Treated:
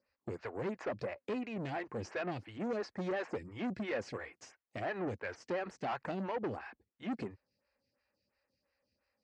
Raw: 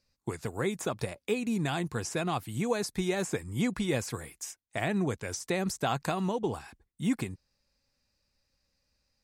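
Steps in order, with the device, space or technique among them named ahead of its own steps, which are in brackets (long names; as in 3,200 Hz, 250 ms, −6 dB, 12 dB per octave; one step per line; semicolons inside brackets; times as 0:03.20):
vibe pedal into a guitar amplifier (phaser with staggered stages 2.9 Hz; tube saturation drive 35 dB, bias 0.3; loudspeaker in its box 99–4,400 Hz, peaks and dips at 150 Hz −8 dB, 550 Hz +3 dB, 1,800 Hz +3 dB, 3,600 Hz −10 dB)
level +2.5 dB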